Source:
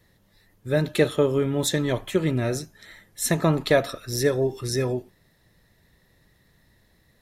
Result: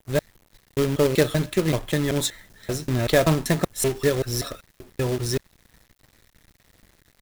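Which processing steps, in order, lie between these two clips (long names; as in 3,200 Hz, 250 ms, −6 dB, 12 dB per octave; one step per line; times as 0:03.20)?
slices reordered back to front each 192 ms, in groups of 4
log-companded quantiser 4 bits
low-shelf EQ 69 Hz +9 dB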